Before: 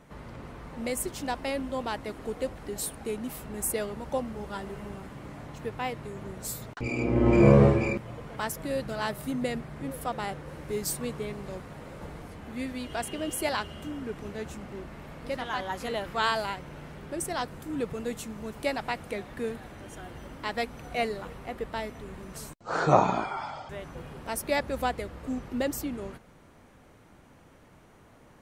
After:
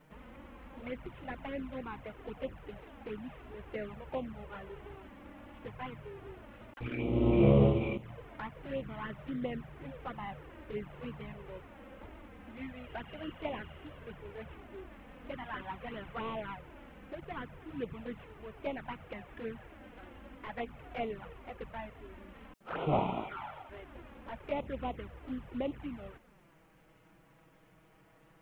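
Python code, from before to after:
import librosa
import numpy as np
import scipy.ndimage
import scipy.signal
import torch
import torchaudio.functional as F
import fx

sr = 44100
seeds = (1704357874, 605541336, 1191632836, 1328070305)

y = fx.cvsd(x, sr, bps=16000)
y = fx.quant_dither(y, sr, seeds[0], bits=12, dither='triangular')
y = fx.env_flanger(y, sr, rest_ms=7.3, full_db=-26.0)
y = y * 10.0 ** (-4.5 / 20.0)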